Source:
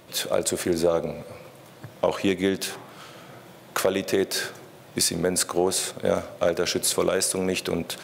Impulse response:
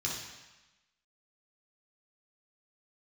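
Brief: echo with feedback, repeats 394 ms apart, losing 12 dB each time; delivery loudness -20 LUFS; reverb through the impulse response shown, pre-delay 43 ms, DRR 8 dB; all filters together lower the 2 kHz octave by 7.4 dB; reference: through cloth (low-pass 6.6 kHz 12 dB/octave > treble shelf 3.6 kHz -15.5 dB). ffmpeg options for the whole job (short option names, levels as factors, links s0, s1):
-filter_complex "[0:a]equalizer=f=2000:t=o:g=-5.5,aecho=1:1:394|788|1182:0.251|0.0628|0.0157,asplit=2[s0][s1];[1:a]atrim=start_sample=2205,adelay=43[s2];[s1][s2]afir=irnorm=-1:irlink=0,volume=0.237[s3];[s0][s3]amix=inputs=2:normalize=0,lowpass=6600,highshelf=f=3600:g=-15.5,volume=2.11"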